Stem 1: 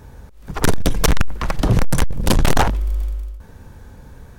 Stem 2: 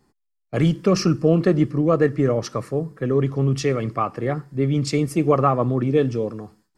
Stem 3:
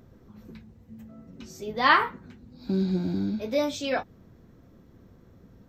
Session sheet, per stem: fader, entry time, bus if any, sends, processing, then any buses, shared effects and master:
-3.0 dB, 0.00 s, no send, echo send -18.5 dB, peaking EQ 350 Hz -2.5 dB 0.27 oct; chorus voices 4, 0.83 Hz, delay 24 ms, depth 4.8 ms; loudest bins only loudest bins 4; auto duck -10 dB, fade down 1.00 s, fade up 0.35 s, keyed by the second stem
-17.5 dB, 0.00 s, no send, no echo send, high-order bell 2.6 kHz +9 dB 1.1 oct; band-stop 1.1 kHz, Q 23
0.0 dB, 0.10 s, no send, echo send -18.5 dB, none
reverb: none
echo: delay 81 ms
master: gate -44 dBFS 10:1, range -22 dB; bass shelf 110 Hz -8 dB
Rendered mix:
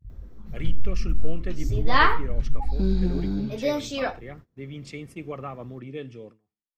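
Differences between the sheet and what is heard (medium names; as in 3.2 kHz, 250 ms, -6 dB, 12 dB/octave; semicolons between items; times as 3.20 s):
stem 1 -3.0 dB -> +4.5 dB; master: missing bass shelf 110 Hz -8 dB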